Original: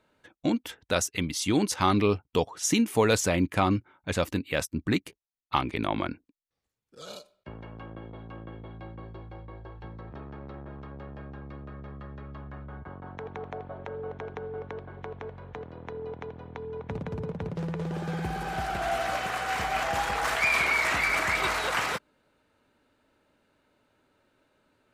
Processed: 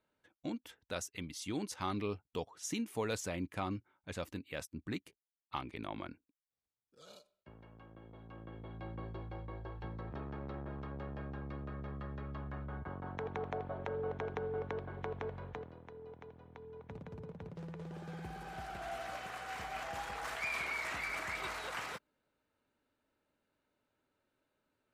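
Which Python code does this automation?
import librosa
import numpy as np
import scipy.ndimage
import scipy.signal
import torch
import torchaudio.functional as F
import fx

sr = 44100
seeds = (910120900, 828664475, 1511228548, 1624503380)

y = fx.gain(x, sr, db=fx.line((7.91, -14.0), (8.96, -1.5), (15.44, -1.5), (15.89, -13.5)))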